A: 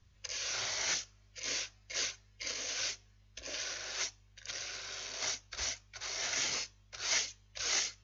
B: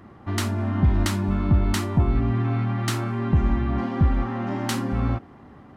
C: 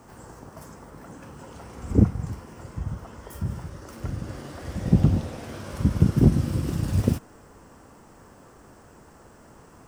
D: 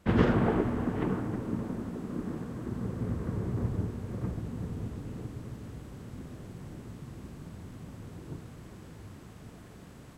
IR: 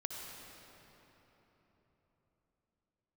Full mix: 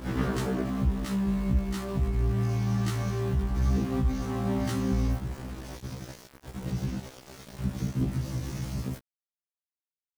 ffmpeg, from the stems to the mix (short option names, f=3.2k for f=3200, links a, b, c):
-filter_complex "[0:a]acompressor=threshold=-39dB:ratio=6,adelay=2200,volume=-9.5dB,asplit=2[a][b];[b]volume=-11dB[c];[1:a]bandreject=f=760:w=17,acompressor=threshold=-34dB:ratio=3,aeval=exprs='val(0)+0.00251*(sin(2*PI*60*n/s)+sin(2*PI*2*60*n/s)/2+sin(2*PI*3*60*n/s)/3+sin(2*PI*4*60*n/s)/4+sin(2*PI*5*60*n/s)/5)':c=same,volume=2.5dB[d];[2:a]highpass=f=100:p=1,adynamicequalizer=threshold=0.0158:dfrequency=320:dqfactor=1.1:tfrequency=320:tqfactor=1.1:attack=5:release=100:ratio=0.375:range=2:mode=cutabove:tftype=bell,adelay=1800,volume=-8.5dB[e];[3:a]volume=-4.5dB,afade=t=out:st=0.61:d=0.22:silence=0.334965,asplit=2[f][g];[g]volume=-9.5dB[h];[d][e]amix=inputs=2:normalize=0,lowshelf=f=440:g=8,alimiter=limit=-17dB:level=0:latency=1:release=107,volume=0dB[i];[4:a]atrim=start_sample=2205[j];[c][h]amix=inputs=2:normalize=0[k];[k][j]afir=irnorm=-1:irlink=0[l];[a][f][i][l]amix=inputs=4:normalize=0,aeval=exprs='val(0)*gte(abs(val(0)),0.0168)':c=same,afftfilt=real='re*1.73*eq(mod(b,3),0)':imag='im*1.73*eq(mod(b,3),0)':win_size=2048:overlap=0.75"